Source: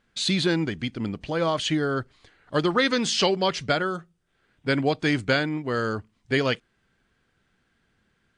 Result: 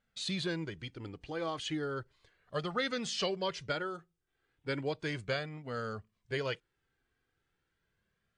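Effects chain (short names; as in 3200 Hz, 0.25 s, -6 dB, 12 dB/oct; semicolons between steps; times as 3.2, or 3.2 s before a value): flange 0.35 Hz, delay 1.4 ms, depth 1.2 ms, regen -33%; gain -8 dB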